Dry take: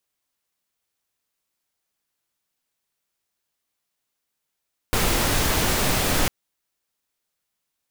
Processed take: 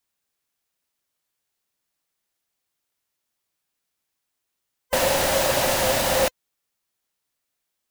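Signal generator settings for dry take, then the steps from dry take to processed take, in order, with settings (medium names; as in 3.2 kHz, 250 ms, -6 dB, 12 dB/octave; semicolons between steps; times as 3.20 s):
noise pink, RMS -21 dBFS 1.35 s
split-band scrambler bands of 500 Hz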